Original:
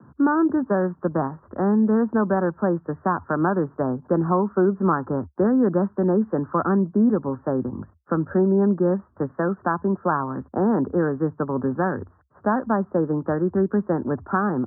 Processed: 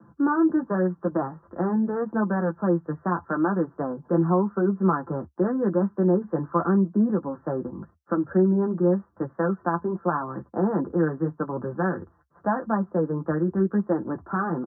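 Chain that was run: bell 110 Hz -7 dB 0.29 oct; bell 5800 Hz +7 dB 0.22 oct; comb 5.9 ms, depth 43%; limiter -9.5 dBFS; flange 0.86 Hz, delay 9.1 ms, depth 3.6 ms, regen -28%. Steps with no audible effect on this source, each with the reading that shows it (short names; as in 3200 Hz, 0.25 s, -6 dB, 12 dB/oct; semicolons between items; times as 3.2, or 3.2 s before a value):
bell 5800 Hz: input band ends at 1600 Hz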